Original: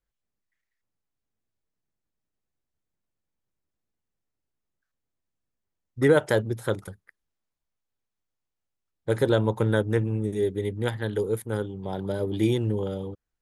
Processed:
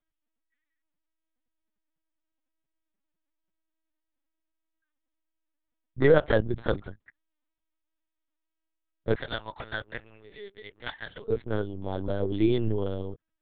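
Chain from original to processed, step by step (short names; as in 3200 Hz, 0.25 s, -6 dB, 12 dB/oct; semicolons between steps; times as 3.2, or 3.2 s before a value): 9.15–11.29 HPF 1200 Hz 12 dB/oct; LPC vocoder at 8 kHz pitch kept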